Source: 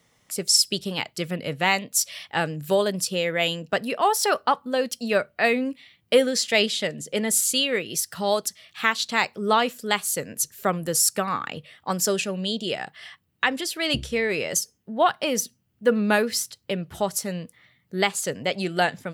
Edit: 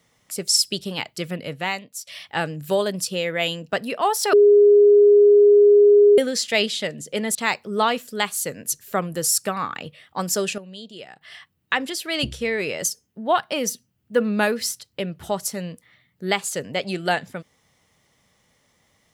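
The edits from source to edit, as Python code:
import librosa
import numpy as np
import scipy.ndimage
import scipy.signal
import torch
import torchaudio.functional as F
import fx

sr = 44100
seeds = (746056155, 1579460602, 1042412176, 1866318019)

y = fx.edit(x, sr, fx.fade_out_to(start_s=1.33, length_s=0.74, floor_db=-17.0),
    fx.bleep(start_s=4.33, length_s=1.85, hz=411.0, db=-9.0),
    fx.cut(start_s=7.35, length_s=1.71),
    fx.clip_gain(start_s=12.29, length_s=0.63, db=-11.5), tone=tone)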